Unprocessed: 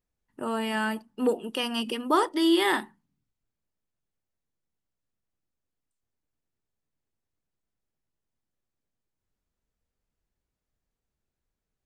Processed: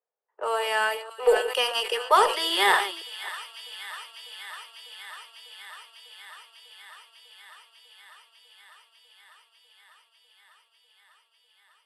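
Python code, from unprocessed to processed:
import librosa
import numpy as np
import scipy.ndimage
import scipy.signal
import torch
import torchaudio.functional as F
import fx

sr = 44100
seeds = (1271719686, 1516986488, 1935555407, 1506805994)

p1 = fx.reverse_delay(x, sr, ms=274, wet_db=-13.0)
p2 = scipy.signal.sosfilt(scipy.signal.butter(12, 420.0, 'highpass', fs=sr, output='sos'), p1)
p3 = fx.env_lowpass(p2, sr, base_hz=1100.0, full_db=-29.5)
p4 = np.sign(p3) * np.maximum(np.abs(p3) - 10.0 ** (-39.5 / 20.0), 0.0)
p5 = p3 + (p4 * 10.0 ** (-11.0 / 20.0))
p6 = fx.cheby_harmonics(p5, sr, harmonics=(4,), levels_db=(-34,), full_scale_db=-9.5)
p7 = p6 + fx.echo_wet_highpass(p6, sr, ms=598, feedback_pct=81, hz=1700.0, wet_db=-13.5, dry=0)
p8 = fx.sustainer(p7, sr, db_per_s=100.0)
y = p8 * 10.0 ** (3.5 / 20.0)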